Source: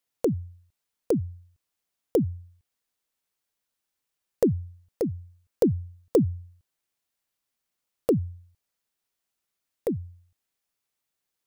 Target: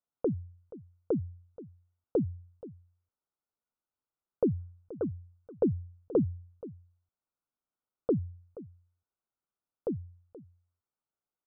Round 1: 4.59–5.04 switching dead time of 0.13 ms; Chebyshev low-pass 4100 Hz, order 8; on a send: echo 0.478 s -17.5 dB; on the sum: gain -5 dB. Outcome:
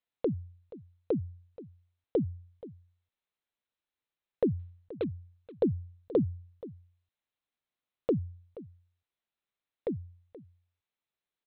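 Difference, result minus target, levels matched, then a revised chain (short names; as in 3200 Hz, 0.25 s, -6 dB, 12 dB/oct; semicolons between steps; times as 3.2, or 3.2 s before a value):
2000 Hz band +7.0 dB
4.59–5.04 switching dead time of 0.13 ms; Chebyshev low-pass 1500 Hz, order 8; on a send: echo 0.478 s -17.5 dB; on the sum: gain -5 dB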